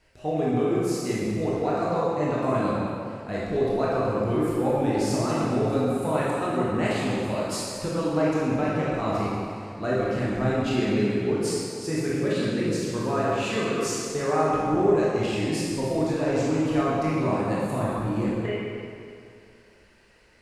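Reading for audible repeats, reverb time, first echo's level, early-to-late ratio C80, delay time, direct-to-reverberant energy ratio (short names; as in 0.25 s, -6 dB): none, 2.4 s, none, -1.0 dB, none, -7.5 dB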